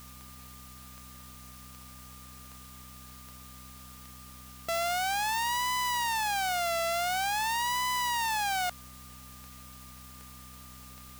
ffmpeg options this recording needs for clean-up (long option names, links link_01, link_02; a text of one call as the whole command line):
ffmpeg -i in.wav -af "adeclick=threshold=4,bandreject=frequency=63.8:width_type=h:width=4,bandreject=frequency=127.6:width_type=h:width=4,bandreject=frequency=191.4:width_type=h:width=4,bandreject=frequency=255.2:width_type=h:width=4,bandreject=frequency=1200:width=30,afftdn=noise_reduction=30:noise_floor=-49" out.wav